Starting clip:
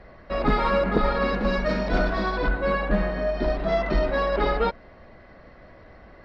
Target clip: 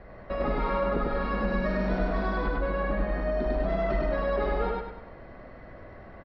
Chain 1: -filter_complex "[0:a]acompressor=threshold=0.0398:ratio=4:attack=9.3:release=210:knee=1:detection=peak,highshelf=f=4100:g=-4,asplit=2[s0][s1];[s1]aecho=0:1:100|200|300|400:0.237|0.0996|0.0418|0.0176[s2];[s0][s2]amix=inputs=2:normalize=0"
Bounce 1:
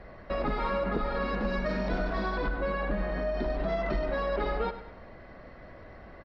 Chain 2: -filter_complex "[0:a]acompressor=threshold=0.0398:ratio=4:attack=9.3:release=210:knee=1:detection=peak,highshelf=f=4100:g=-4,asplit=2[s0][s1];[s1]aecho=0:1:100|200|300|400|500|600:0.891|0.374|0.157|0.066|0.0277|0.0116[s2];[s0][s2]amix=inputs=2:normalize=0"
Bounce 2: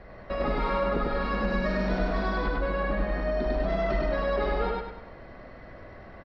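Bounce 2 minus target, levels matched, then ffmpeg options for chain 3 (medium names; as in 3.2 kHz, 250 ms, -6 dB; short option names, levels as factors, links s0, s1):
4 kHz band +4.5 dB
-filter_complex "[0:a]acompressor=threshold=0.0398:ratio=4:attack=9.3:release=210:knee=1:detection=peak,highshelf=f=4100:g=-15,asplit=2[s0][s1];[s1]aecho=0:1:100|200|300|400|500|600:0.891|0.374|0.157|0.066|0.0277|0.0116[s2];[s0][s2]amix=inputs=2:normalize=0"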